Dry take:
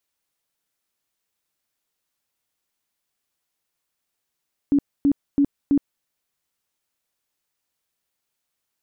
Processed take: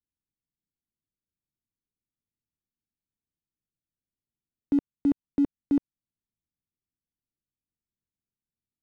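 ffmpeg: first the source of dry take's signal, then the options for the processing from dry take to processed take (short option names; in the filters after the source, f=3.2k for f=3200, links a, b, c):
-f lavfi -i "aevalsrc='0.211*sin(2*PI*283*mod(t,0.33))*lt(mod(t,0.33),19/283)':d=1.32:s=44100"
-filter_complex "[0:a]acrossover=split=310[a][b];[a]alimiter=level_in=1dB:limit=-24dB:level=0:latency=1:release=345,volume=-1dB[c];[b]aeval=exprs='sgn(val(0))*max(abs(val(0))-0.00422,0)':c=same[d];[c][d]amix=inputs=2:normalize=0"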